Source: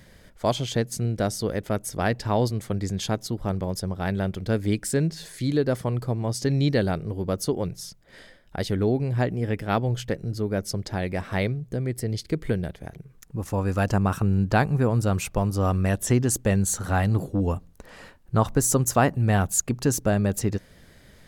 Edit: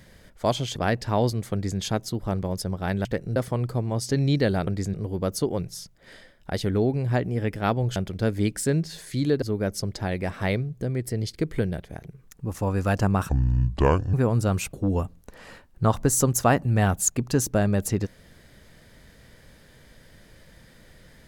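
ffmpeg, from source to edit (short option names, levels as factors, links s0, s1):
-filter_complex "[0:a]asplit=11[s0][s1][s2][s3][s4][s5][s6][s7][s8][s9][s10];[s0]atrim=end=0.762[s11];[s1]atrim=start=1.938:end=4.232[s12];[s2]atrim=start=10.018:end=10.332[s13];[s3]atrim=start=5.688:end=7.002[s14];[s4]atrim=start=2.708:end=2.982[s15];[s5]atrim=start=6.998:end=10.022[s16];[s6]atrim=start=4.228:end=5.692[s17];[s7]atrim=start=10.328:end=14.204[s18];[s8]atrim=start=14.2:end=14.74,asetpts=PTS-STARTPTS,asetrate=28224,aresample=44100,atrim=end_sample=37209,asetpts=PTS-STARTPTS[s19];[s9]atrim=start=14.736:end=15.342[s20];[s10]atrim=start=17.248[s21];[s11][s12]acrossfade=d=0.004:c1=hsin:c2=hsin[s22];[s22][s13]acrossfade=d=0.004:c1=hsin:c2=hsin[s23];[s23][s14]acrossfade=d=0.004:c1=hsin:c2=hsin[s24];[s24][s15]acrossfade=d=0.004:c1=hsin:c2=hsin[s25];[s25][s16]acrossfade=d=0.004:c1=hsin:c2=hsin[s26];[s26][s17]acrossfade=d=0.004:c1=hsin:c2=hsin[s27];[s27][s18]acrossfade=d=0.004:c1=hsin:c2=hsin[s28];[s28][s19]acrossfade=d=0.004:c1=hsin:c2=hsin[s29];[s29][s20]acrossfade=d=0.004:c1=hsin:c2=hsin[s30];[s30][s21]acrossfade=d=0.004:c1=hsin:c2=hsin"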